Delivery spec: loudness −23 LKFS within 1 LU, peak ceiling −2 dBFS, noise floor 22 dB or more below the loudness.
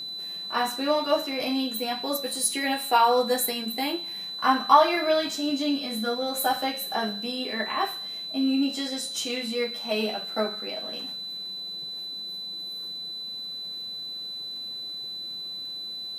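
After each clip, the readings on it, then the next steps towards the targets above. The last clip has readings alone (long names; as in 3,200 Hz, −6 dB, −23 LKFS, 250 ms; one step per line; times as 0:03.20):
crackle rate 23 per second; interfering tone 4,000 Hz; level of the tone −33 dBFS; integrated loudness −27.0 LKFS; sample peak −4.5 dBFS; target loudness −23.0 LKFS
→ click removal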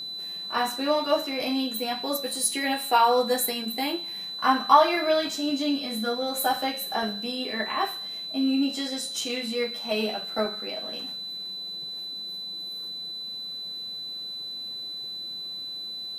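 crackle rate 0 per second; interfering tone 4,000 Hz; level of the tone −33 dBFS
→ notch filter 4,000 Hz, Q 30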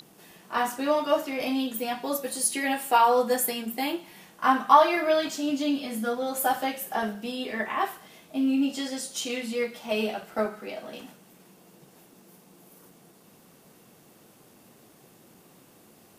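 interfering tone none found; integrated loudness −26.5 LKFS; sample peak −4.0 dBFS; target loudness −23.0 LKFS
→ level +3.5 dB
brickwall limiter −2 dBFS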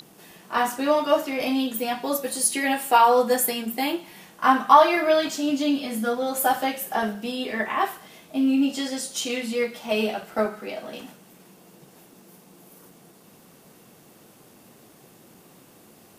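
integrated loudness −23.0 LKFS; sample peak −2.0 dBFS; background noise floor −53 dBFS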